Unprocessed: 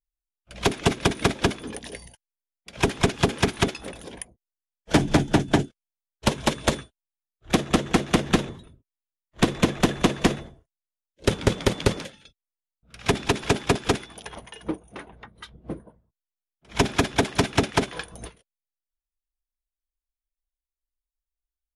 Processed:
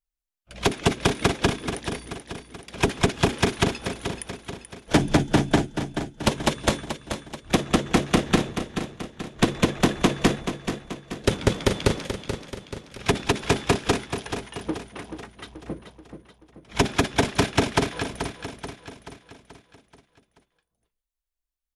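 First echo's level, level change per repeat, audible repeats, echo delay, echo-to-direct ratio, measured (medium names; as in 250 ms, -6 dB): -9.0 dB, -6.0 dB, 5, 432 ms, -7.5 dB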